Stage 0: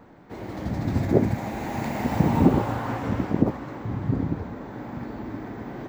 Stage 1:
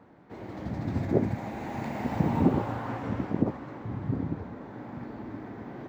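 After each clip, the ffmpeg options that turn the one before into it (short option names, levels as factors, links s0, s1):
-af "highpass=67,highshelf=f=6200:g=-10.5,volume=0.562"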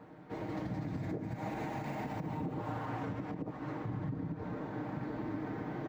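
-af "aecho=1:1:6.5:0.53,acompressor=threshold=0.0251:ratio=3,alimiter=level_in=2.11:limit=0.0631:level=0:latency=1:release=111,volume=0.473,volume=1.12"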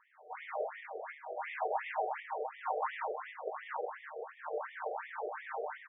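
-af "dynaudnorm=f=110:g=5:m=3.35,aecho=1:1:20|43|69.45|99.87|134.8:0.631|0.398|0.251|0.158|0.1,afftfilt=real='re*between(b*sr/1024,520*pow(2600/520,0.5+0.5*sin(2*PI*2.8*pts/sr))/1.41,520*pow(2600/520,0.5+0.5*sin(2*PI*2.8*pts/sr))*1.41)':imag='im*between(b*sr/1024,520*pow(2600/520,0.5+0.5*sin(2*PI*2.8*pts/sr))/1.41,520*pow(2600/520,0.5+0.5*sin(2*PI*2.8*pts/sr))*1.41)':win_size=1024:overlap=0.75,volume=0.794"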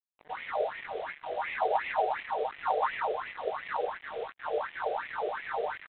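-af "acrusher=bits=7:mix=0:aa=0.5,volume=2.11" -ar 8000 -c:a adpcm_ima_wav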